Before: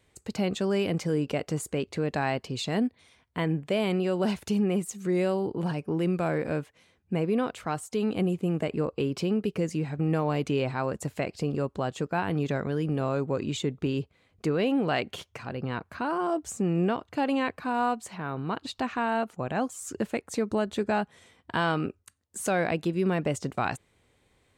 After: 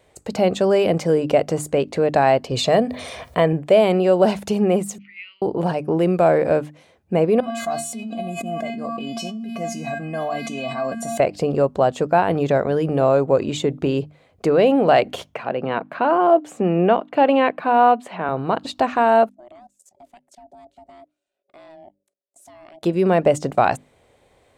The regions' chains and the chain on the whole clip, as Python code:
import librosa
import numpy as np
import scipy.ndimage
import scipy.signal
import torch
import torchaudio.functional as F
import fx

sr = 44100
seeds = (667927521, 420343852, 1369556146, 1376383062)

y = fx.chain(x, sr, fx.highpass(hz=60.0, slope=12),
    fx.comb(ms=1.7, depth=0.35),
    fx.env_flatten(amount_pct=50), at=(2.51, 3.53))
y = fx.chain(y, sr, fx.ellip_bandpass(low_hz=1800.0, high_hz=3700.0, order=3, stop_db=50),
    fx.fixed_phaser(hz=2500.0, stages=8), at=(4.98, 5.42))
y = fx.chain(y, sr, fx.comb_fb(f0_hz=230.0, decay_s=0.36, harmonics='odd', damping=0.0, mix_pct=100),
    fx.env_flatten(amount_pct=100), at=(7.4, 11.2))
y = fx.chain(y, sr, fx.highpass(hz=150.0, slope=24),
    fx.high_shelf_res(hz=4200.0, db=-10.0, q=1.5), at=(15.34, 18.29))
y = fx.chain(y, sr, fx.tone_stack(knobs='6-0-2'),
    fx.level_steps(step_db=18),
    fx.ring_mod(carrier_hz=480.0), at=(19.29, 22.83))
y = fx.peak_eq(y, sr, hz=630.0, db=11.0, octaves=1.1)
y = fx.hum_notches(y, sr, base_hz=50, count=6)
y = y * librosa.db_to_amplitude(5.5)